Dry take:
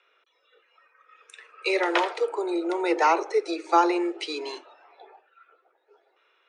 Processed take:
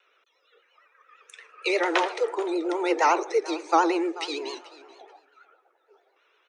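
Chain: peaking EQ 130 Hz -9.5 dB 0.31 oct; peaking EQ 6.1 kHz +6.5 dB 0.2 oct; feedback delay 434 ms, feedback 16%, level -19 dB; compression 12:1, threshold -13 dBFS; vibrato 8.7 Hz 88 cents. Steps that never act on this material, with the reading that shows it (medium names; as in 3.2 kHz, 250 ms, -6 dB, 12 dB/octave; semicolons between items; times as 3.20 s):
peaking EQ 130 Hz: input has nothing below 290 Hz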